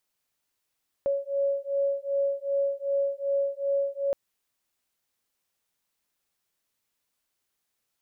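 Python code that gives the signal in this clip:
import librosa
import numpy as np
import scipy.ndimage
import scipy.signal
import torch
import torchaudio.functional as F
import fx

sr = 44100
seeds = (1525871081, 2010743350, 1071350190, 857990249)

y = fx.two_tone_beats(sr, length_s=3.07, hz=556.0, beat_hz=2.6, level_db=-27.5)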